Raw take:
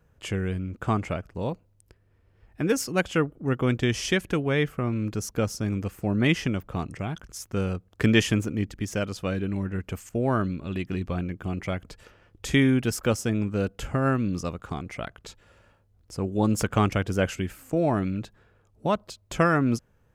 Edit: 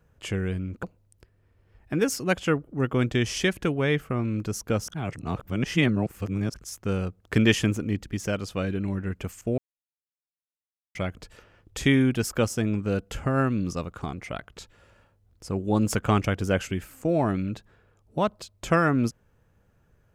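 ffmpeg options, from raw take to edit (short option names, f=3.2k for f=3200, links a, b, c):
-filter_complex "[0:a]asplit=6[a][b][c][d][e][f];[a]atrim=end=0.832[g];[b]atrim=start=1.508:end=5.562[h];[c]atrim=start=5.558:end=7.222,asetpts=PTS-STARTPTS,areverse[i];[d]atrim=start=7.218:end=10.26,asetpts=PTS-STARTPTS,afade=t=out:st=3.038:d=0.004:c=hsin[j];[e]atrim=start=10.26:end=11.63,asetpts=PTS-STARTPTS,volume=0[k];[f]atrim=start=11.63,asetpts=PTS-STARTPTS,afade=t=in:d=0.004:c=hsin[l];[g][h]acrossfade=d=0.004:c1=hsin:c2=hsin[m];[m][i]acrossfade=d=0.004:c1=hsin:c2=hsin[n];[j][k][l]concat=n=3:v=0:a=1[o];[n][o]acrossfade=d=0.004:c1=hsin:c2=hsin"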